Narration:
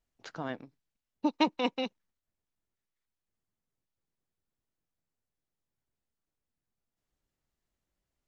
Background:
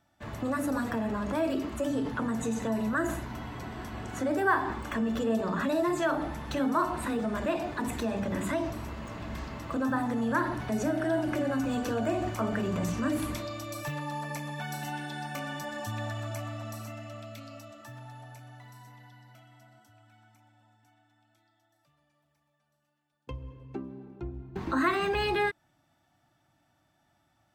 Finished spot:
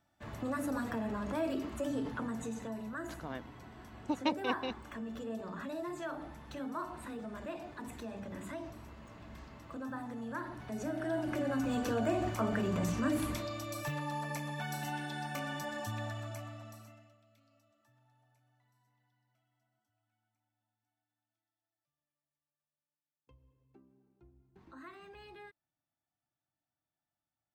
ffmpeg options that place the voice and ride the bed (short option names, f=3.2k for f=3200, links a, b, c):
-filter_complex "[0:a]adelay=2850,volume=-5.5dB[a];[1:a]volume=4.5dB,afade=t=out:st=2.01:d=0.81:silence=0.446684,afade=t=in:st=10.54:d=1.34:silence=0.316228,afade=t=out:st=15.7:d=1.47:silence=0.0794328[b];[a][b]amix=inputs=2:normalize=0"